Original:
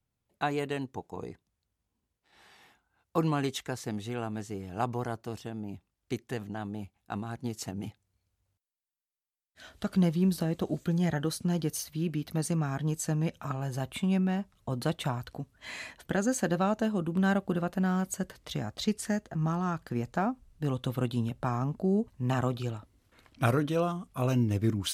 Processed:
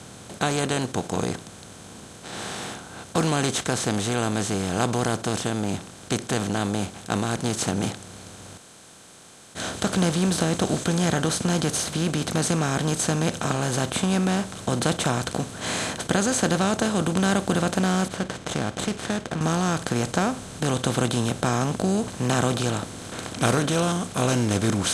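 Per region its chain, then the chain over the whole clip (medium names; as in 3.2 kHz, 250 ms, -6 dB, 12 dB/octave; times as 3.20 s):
18.08–19.41 s: four-pole ladder low-pass 3.6 kHz, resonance 30% + sliding maximum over 5 samples
whole clip: spectral levelling over time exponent 0.4; low-pass 9.8 kHz 24 dB/octave; treble shelf 4.4 kHz +8.5 dB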